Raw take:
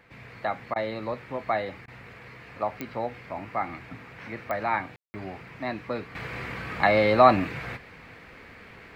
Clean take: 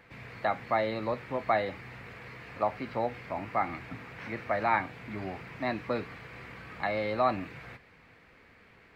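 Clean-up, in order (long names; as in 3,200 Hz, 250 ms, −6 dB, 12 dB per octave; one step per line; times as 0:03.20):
click removal
ambience match 0:04.96–0:05.14
repair the gap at 0:00.74/0:01.86, 18 ms
level 0 dB, from 0:06.15 −10.5 dB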